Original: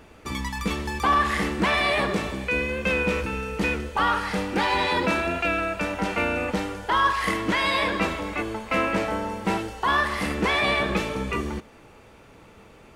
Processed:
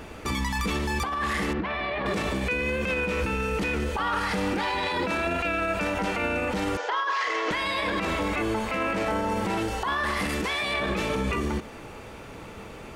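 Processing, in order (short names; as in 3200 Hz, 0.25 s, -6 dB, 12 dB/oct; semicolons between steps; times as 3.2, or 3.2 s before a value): 6.77–7.51 elliptic band-pass 420–6300 Hz, stop band 40 dB; 10.29–10.74 high shelf 3300 Hz +10 dB; negative-ratio compressor -25 dBFS, ratio -0.5; limiter -25.5 dBFS, peak gain reduction 13 dB; 1.53–2.06 air absorption 310 m; gain +6.5 dB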